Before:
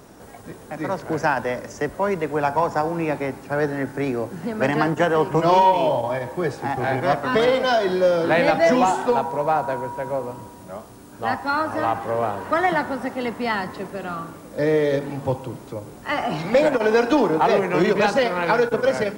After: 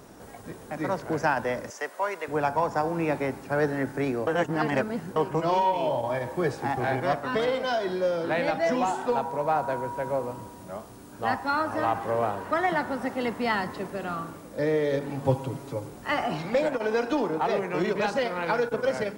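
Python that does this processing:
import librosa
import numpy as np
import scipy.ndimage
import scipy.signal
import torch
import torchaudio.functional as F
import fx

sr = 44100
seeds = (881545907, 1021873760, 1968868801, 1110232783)

y = fx.highpass(x, sr, hz=680.0, slope=12, at=(1.7, 2.28))
y = fx.comb(y, sr, ms=7.2, depth=0.65, at=(15.24, 15.88))
y = fx.edit(y, sr, fx.reverse_span(start_s=4.27, length_s=0.89), tone=tone)
y = fx.rider(y, sr, range_db=3, speed_s=0.5)
y = y * 10.0 ** (-5.5 / 20.0)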